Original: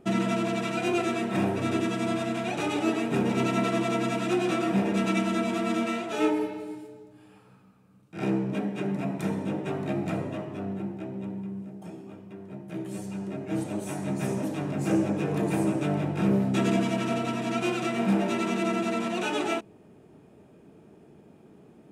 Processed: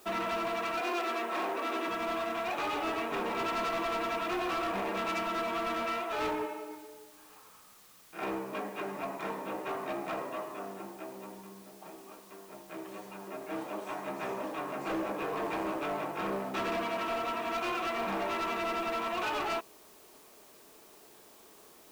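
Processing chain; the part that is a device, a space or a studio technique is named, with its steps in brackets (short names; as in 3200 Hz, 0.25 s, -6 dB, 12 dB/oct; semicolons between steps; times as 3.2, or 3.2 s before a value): drive-through speaker (BPF 520–3100 Hz; bell 1100 Hz +9.5 dB 0.35 oct; hard clip -29.5 dBFS, distortion -11 dB; white noise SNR 23 dB); 0.81–1.88 steep high-pass 230 Hz 36 dB/oct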